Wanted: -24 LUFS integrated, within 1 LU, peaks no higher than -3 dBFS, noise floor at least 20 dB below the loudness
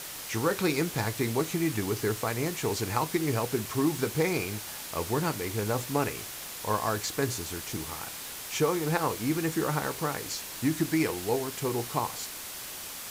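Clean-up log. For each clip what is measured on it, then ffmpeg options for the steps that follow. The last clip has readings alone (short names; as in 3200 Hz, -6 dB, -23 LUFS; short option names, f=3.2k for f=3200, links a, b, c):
noise floor -40 dBFS; noise floor target -50 dBFS; loudness -30.0 LUFS; peak -12.0 dBFS; loudness target -24.0 LUFS
-> -af "afftdn=nr=10:nf=-40"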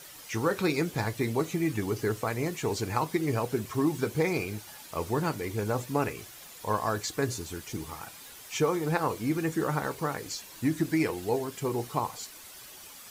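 noise floor -48 dBFS; noise floor target -51 dBFS
-> -af "afftdn=nr=6:nf=-48"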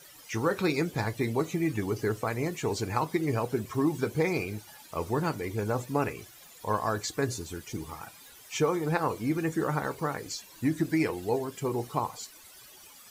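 noise floor -52 dBFS; loudness -30.5 LUFS; peak -12.5 dBFS; loudness target -24.0 LUFS
-> -af "volume=6.5dB"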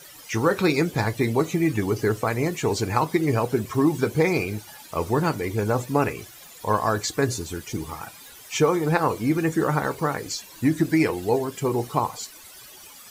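loudness -24.0 LUFS; peak -6.0 dBFS; noise floor -46 dBFS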